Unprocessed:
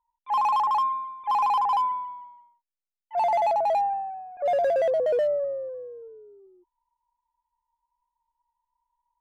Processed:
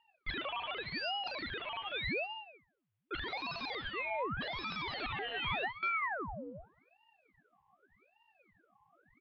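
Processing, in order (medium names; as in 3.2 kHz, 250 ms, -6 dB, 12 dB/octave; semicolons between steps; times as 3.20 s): 4.72–5.83 s: gate with hold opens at -23 dBFS; wavefolder -36.5 dBFS; gain riding within 4 dB 2 s; steep low-pass 3.3 kHz 72 dB/octave; on a send: feedback delay 65 ms, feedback 44%, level -15.5 dB; on the sum: ring modulator with a swept carrier 980 Hz, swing 90%, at 0.85 Hz; trim +8 dB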